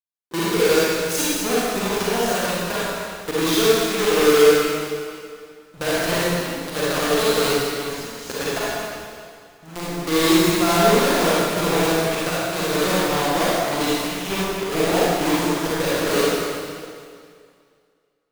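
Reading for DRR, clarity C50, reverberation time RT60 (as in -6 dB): -9.0 dB, -6.0 dB, 2.2 s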